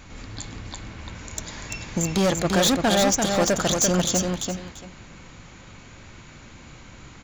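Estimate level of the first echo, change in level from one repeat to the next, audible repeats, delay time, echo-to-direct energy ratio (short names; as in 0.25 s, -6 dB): -4.5 dB, -14.0 dB, 2, 0.341 s, -4.5 dB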